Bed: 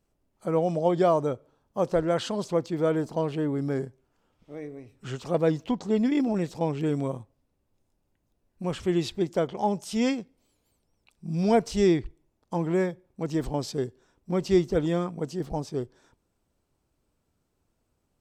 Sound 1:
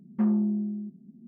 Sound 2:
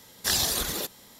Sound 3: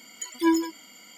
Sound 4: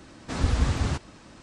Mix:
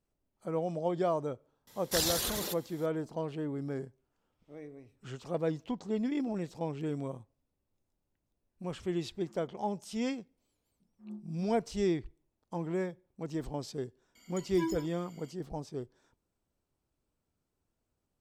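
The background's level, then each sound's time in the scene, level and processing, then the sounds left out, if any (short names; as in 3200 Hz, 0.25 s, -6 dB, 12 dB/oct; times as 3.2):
bed -8.5 dB
1.67 add 2 -6 dB
9.07 add 1 -9 dB + differentiator
10.8 add 1 -17.5 dB + dB-linear tremolo 3 Hz, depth 23 dB
14.15 add 3 -12.5 dB
not used: 4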